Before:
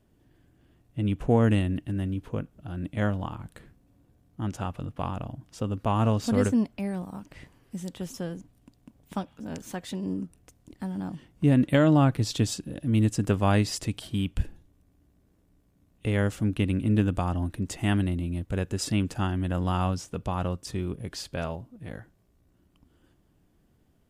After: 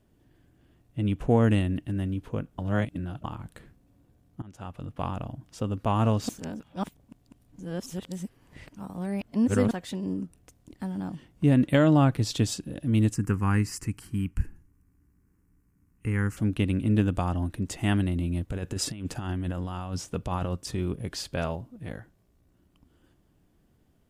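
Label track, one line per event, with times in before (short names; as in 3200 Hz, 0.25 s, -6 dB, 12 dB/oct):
2.580000	3.240000	reverse
4.420000	5.030000	fade in, from -23.5 dB
6.290000	9.710000	reverse
13.140000	16.370000	fixed phaser centre 1500 Hz, stages 4
18.150000	21.930000	negative-ratio compressor -29 dBFS, ratio -0.5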